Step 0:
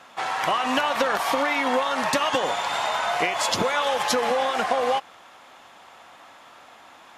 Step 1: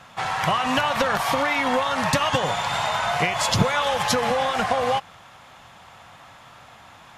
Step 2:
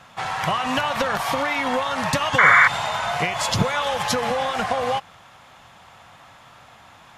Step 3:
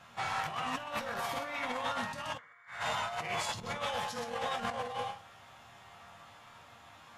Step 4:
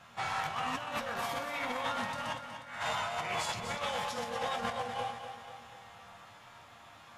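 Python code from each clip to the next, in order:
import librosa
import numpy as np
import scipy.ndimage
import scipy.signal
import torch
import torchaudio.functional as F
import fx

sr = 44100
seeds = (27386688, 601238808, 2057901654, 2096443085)

y1 = fx.low_shelf_res(x, sr, hz=200.0, db=12.5, q=1.5)
y1 = F.gain(torch.from_numpy(y1), 1.5).numpy()
y2 = fx.spec_paint(y1, sr, seeds[0], shape='noise', start_s=2.38, length_s=0.3, low_hz=1000.0, high_hz=2300.0, level_db=-12.0)
y2 = F.gain(torch.from_numpy(y2), -1.0).numpy()
y3 = fx.resonator_bank(y2, sr, root=39, chord='major', decay_s=0.32)
y3 = y3 + 10.0 ** (-9.0 / 20.0) * np.pad(y3, (int(126 * sr / 1000.0), 0))[:len(y3)]
y3 = fx.over_compress(y3, sr, threshold_db=-37.0, ratio=-0.5)
y4 = fx.echo_feedback(y3, sr, ms=243, feedback_pct=55, wet_db=-9.0)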